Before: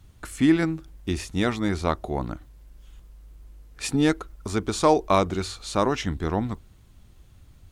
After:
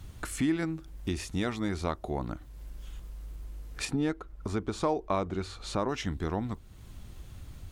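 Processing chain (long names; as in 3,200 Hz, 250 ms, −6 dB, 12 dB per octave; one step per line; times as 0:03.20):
0:03.85–0:05.89: high-shelf EQ 3,500 Hz −11.5 dB
downward compressor 2 to 1, threshold −45 dBFS, peak gain reduction 17 dB
level +6.5 dB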